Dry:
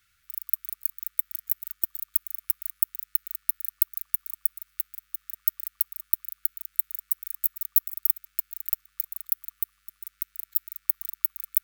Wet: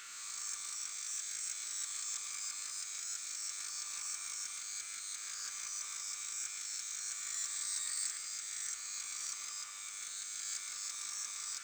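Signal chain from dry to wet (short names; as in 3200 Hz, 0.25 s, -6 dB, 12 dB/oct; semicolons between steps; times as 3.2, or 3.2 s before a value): spectral swells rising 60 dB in 1.39 s; brick-wall FIR band-pass 250–8600 Hz; power-law curve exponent 0.7; reverb RT60 2.5 s, pre-delay 81 ms, DRR 8 dB; gain +5.5 dB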